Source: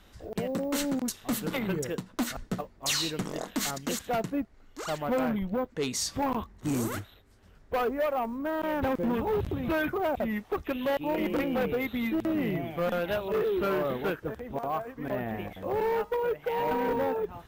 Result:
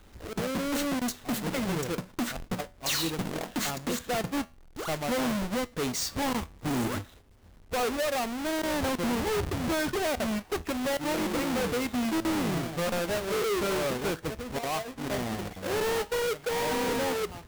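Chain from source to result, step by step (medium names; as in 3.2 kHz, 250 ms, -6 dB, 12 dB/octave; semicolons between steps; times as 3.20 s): square wave that keeps the level; feedback comb 82 Hz, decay 0.32 s, harmonics all, mix 40%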